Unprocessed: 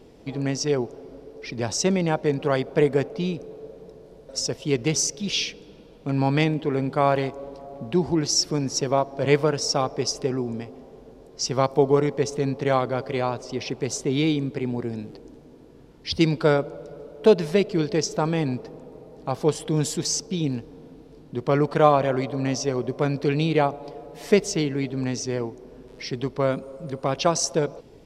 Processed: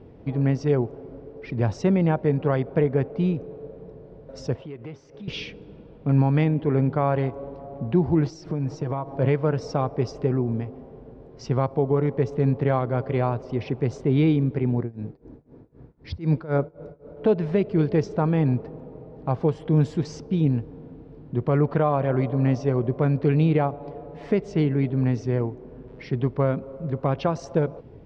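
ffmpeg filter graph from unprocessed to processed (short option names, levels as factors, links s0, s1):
-filter_complex "[0:a]asettb=1/sr,asplit=3[s0][s1][s2];[s0]atrim=end=4.554[s3];[s1]atrim=start=4.55:end=5.28,asetpts=PTS-STARTPTS,afade=t=in:d=0.004:c=qsin,afade=t=out:st=0.726:d=0.004:c=qsin,acompressor=threshold=0.00891:ratio=3:attack=3.2:release=140:knee=1:detection=peak,asplit=2[s4][s5];[s5]highpass=f=720:p=1,volume=3.98,asoftclip=type=tanh:threshold=0.0501[s6];[s4][s6]amix=inputs=2:normalize=0,lowpass=f=1800:p=1,volume=0.501[s7];[s2]atrim=start=5.276[s8];[s3][s7]acrossfade=d=0.004:c1=hsin:c2=qsin[s9];[s9][s8]acrossfade=d=0.004:c1=qsin:c2=hsin,asettb=1/sr,asplit=3[s10][s11][s12];[s10]atrim=end=8.254[s13];[s11]atrim=start=8.25:end=9.16,asetpts=PTS-STARTPTS,afade=t=in:d=0.004:c=qsin,afade=t=out:st=0.906:d=0.004:c=qsin,equalizer=f=700:t=o:w=0.79:g=4,aecho=1:1:6.4:0.56,atrim=end_sample=40131,acompressor=threshold=0.0447:ratio=4:attack=3.2:release=140:knee=1:detection=peak[s14];[s12]atrim=start=9.156[s15];[s13][s14]acrossfade=d=0.004:c1=hsin:c2=qsin[s16];[s16][s15]acrossfade=d=0.004:c1=qsin:c2=hsin,asettb=1/sr,asplit=3[s17][s18][s19];[s17]atrim=end=14.804[s20];[s18]atrim=start=14.8:end=17.17,asetpts=PTS-STARTPTS,afade=t=in:d=0.004:c=qsin,afade=t=out:st=2.366:d=0.004:c=qsin,equalizer=f=3000:t=o:w=0.36:g=-7.5,tremolo=f=3.9:d=0.93[s21];[s19]atrim=start=17.166[s22];[s20][s21]acrossfade=d=0.004:c1=hsin:c2=qsin[s23];[s23][s22]acrossfade=d=0.004:c1=qsin:c2=hsin,lowpass=2000,equalizer=f=96:t=o:w=1.7:g=10,alimiter=limit=0.316:level=0:latency=1:release=288"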